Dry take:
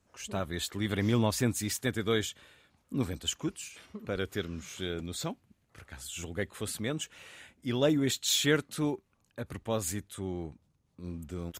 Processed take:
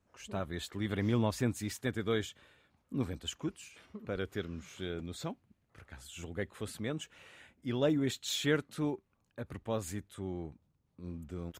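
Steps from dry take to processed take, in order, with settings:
high-shelf EQ 3,700 Hz −8.5 dB
level −3 dB

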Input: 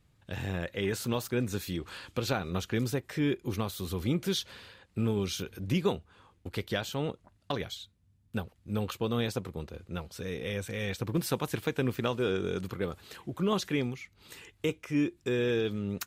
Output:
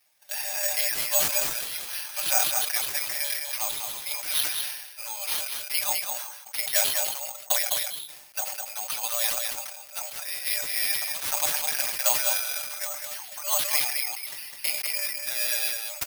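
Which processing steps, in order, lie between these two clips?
Chebyshev high-pass with heavy ripple 570 Hz, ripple 9 dB
comb filter 6.7 ms, depth 99%
on a send: single-tap delay 206 ms −5 dB
on the sum: bad sample-rate conversion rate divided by 6×, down none, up zero stuff
level that may fall only so fast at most 56 dB per second
level +4 dB

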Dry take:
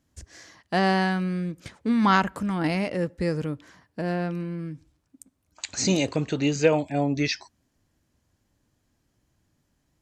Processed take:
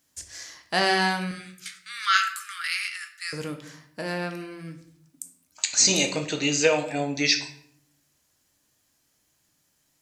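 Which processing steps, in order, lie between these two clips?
0:01.31–0:03.33: Butterworth high-pass 1,200 Hz 96 dB per octave
spectral tilt +3.5 dB per octave
rectangular room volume 120 cubic metres, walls mixed, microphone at 0.5 metres

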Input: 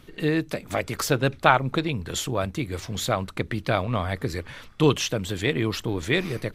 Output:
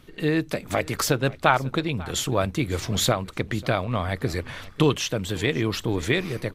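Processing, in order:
camcorder AGC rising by 6.4 dB per second
on a send: single-tap delay 543 ms −21 dB
on the sum: level −1.5 dB

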